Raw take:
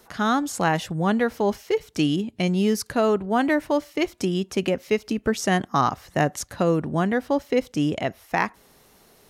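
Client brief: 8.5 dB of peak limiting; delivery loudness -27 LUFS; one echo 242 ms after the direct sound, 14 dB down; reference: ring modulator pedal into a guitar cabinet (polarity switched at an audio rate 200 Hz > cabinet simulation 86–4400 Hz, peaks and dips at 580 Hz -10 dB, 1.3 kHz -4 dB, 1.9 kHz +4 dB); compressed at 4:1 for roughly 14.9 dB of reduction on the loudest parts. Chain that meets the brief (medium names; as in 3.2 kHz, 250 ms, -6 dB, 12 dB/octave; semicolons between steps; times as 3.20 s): compression 4:1, threshold -35 dBFS; peak limiter -28.5 dBFS; delay 242 ms -14 dB; polarity switched at an audio rate 200 Hz; cabinet simulation 86–4400 Hz, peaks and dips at 580 Hz -10 dB, 1.3 kHz -4 dB, 1.9 kHz +4 dB; trim +14.5 dB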